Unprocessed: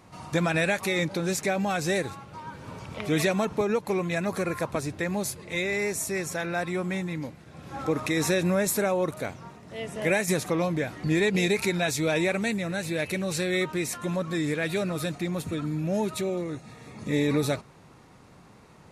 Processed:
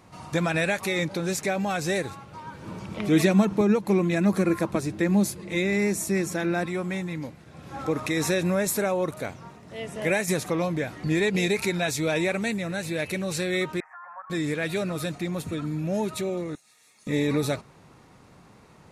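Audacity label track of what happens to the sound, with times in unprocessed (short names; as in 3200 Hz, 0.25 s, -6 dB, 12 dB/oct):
2.620000	6.660000	small resonant body resonances 200/330 Hz, height 12 dB, ringing for 95 ms
13.800000	14.300000	elliptic band-pass 770–1700 Hz, stop band 50 dB
16.550000	17.070000	differentiator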